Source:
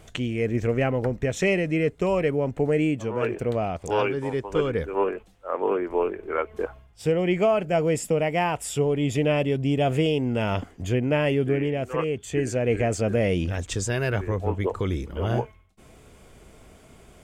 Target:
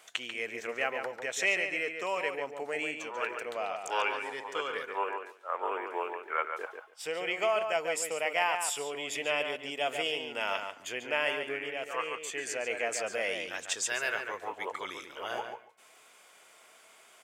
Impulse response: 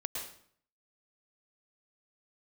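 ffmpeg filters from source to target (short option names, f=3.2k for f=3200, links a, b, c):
-filter_complex "[0:a]highpass=1k,asplit=2[a][b];[b]adelay=142,lowpass=f=3.6k:p=1,volume=-6dB,asplit=2[c][d];[d]adelay=142,lowpass=f=3.6k:p=1,volume=0.15,asplit=2[e][f];[f]adelay=142,lowpass=f=3.6k:p=1,volume=0.15[g];[c][e][g]amix=inputs=3:normalize=0[h];[a][h]amix=inputs=2:normalize=0"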